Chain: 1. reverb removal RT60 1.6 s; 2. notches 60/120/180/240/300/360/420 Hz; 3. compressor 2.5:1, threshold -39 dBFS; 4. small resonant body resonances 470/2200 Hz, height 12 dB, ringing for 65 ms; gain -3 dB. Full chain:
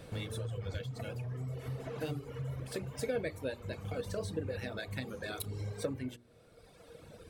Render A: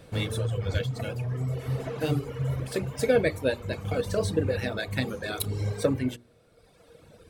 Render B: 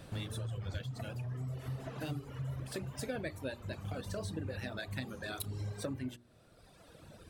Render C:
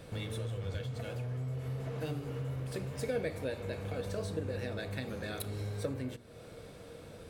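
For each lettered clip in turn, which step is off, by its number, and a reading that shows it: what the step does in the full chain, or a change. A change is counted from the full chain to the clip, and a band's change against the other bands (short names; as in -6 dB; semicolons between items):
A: 3, mean gain reduction 8.5 dB; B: 4, 500 Hz band -5.0 dB; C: 1, momentary loudness spread change +8 LU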